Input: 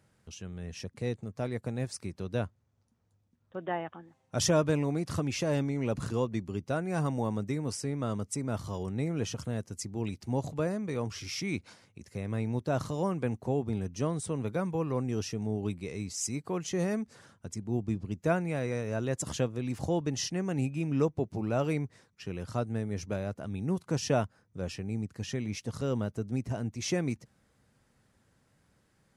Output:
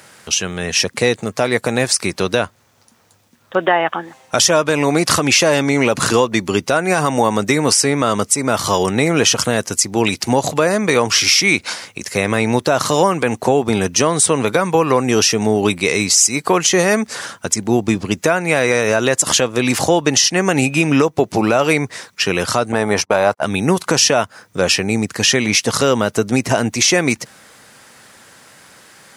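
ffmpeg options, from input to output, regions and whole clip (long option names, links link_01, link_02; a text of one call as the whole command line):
ffmpeg -i in.wav -filter_complex "[0:a]asettb=1/sr,asplit=3[link_01][link_02][link_03];[link_01]atrim=end=22.724[link_04];[link_02]atrim=start=22.72:end=23.42,asetpts=PTS-STARTPTS,afade=type=in:duration=0.004:curve=qsin,afade=type=out:start_time=0.696:duration=0.004:curve=qsin,agate=range=-38dB:threshold=-40dB:ratio=16:release=100:detection=peak,equalizer=frequency=890:width=1.2:gain=11.5,bandreject=frequency=6600:width=10[link_05];[link_03]atrim=start=23.416[link_06];[link_04][link_05]acrossfade=duration=0.004:curve1=hsin:curve2=qsin[link_07];[link_07][link_06]acrossfade=duration=0.004:curve1=qsin:curve2=hsin,highpass=frequency=1100:poles=1,acompressor=threshold=-40dB:ratio=6,alimiter=level_in=32dB:limit=-1dB:release=50:level=0:latency=1,volume=-1dB" out.wav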